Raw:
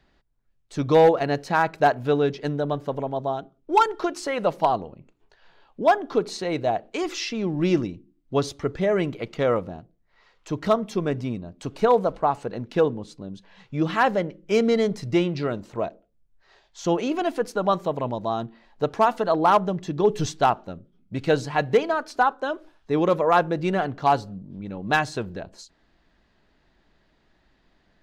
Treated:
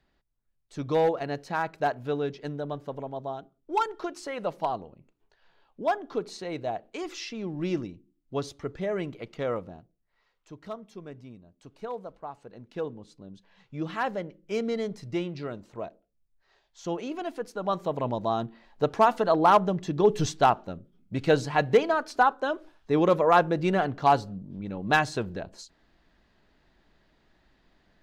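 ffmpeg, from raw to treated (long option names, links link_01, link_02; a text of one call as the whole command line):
ffmpeg -i in.wav -af "volume=8.5dB,afade=type=out:start_time=9.73:duration=0.83:silence=0.334965,afade=type=in:start_time=12.37:duration=0.95:silence=0.375837,afade=type=in:start_time=17.57:duration=0.56:silence=0.398107" out.wav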